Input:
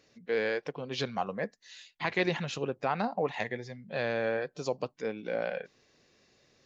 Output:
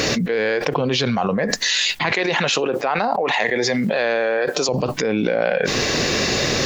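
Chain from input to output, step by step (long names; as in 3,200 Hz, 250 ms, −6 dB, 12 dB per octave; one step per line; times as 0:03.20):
0:02.13–0:04.69: high-pass filter 340 Hz 12 dB per octave
envelope flattener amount 100%
level +6 dB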